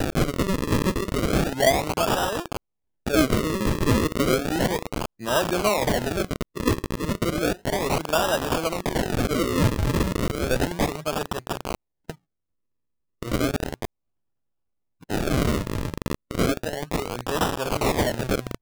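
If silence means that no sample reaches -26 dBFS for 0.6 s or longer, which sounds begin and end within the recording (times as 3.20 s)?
13.23–13.85 s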